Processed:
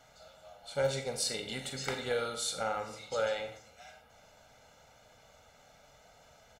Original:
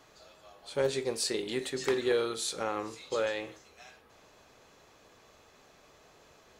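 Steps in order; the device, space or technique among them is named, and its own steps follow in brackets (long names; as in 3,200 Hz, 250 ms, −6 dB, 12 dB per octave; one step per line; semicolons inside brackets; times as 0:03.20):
microphone above a desk (comb filter 1.4 ms, depth 86%; convolution reverb RT60 0.55 s, pre-delay 33 ms, DRR 7 dB)
level −3.5 dB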